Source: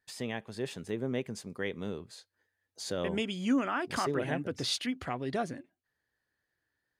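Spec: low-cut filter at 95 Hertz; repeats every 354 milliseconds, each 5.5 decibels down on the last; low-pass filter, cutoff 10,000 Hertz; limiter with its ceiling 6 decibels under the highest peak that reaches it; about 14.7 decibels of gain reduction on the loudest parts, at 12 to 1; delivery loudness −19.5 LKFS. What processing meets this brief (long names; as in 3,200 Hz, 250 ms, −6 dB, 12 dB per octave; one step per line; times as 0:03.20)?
high-pass filter 95 Hz
low-pass filter 10,000 Hz
downward compressor 12 to 1, threshold −38 dBFS
brickwall limiter −33 dBFS
repeating echo 354 ms, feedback 53%, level −5.5 dB
level +24 dB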